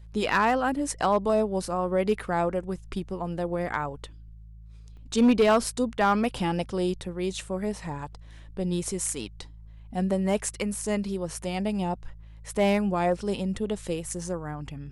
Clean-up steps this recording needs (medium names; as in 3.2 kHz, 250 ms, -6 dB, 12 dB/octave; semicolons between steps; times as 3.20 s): clip repair -14.5 dBFS; de-hum 54.3 Hz, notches 3; interpolate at 4.97 s, 1.9 ms